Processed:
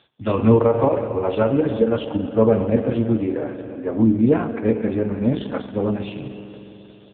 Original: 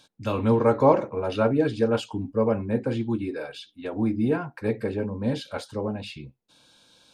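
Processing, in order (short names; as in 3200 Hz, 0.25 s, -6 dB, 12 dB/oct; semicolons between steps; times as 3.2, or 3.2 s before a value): 0.61–2.05 compressor 20:1, threshold -21 dBFS, peak gain reduction 10 dB; 3.33–4.16 LPF 1700 Hz 24 dB/oct; echo 0.245 s -22 dB; spring tank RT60 3.6 s, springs 45 ms, chirp 45 ms, DRR 7.5 dB; gain +7.5 dB; AMR-NB 4.75 kbps 8000 Hz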